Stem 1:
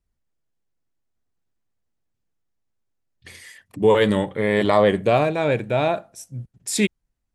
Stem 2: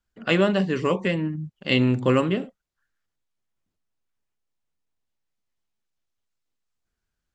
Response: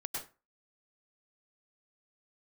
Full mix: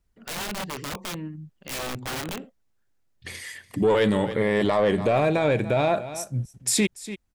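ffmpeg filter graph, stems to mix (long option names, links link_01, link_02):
-filter_complex "[0:a]acontrast=83,volume=-2dB,asplit=2[link_01][link_02];[link_02]volume=-19.5dB[link_03];[1:a]equalizer=frequency=68:width_type=o:width=0.85:gain=5.5,aeval=exprs='(mod(7.94*val(0)+1,2)-1)/7.94':channel_layout=same,volume=-8.5dB[link_04];[link_03]aecho=0:1:289:1[link_05];[link_01][link_04][link_05]amix=inputs=3:normalize=0,alimiter=limit=-13.5dB:level=0:latency=1:release=73"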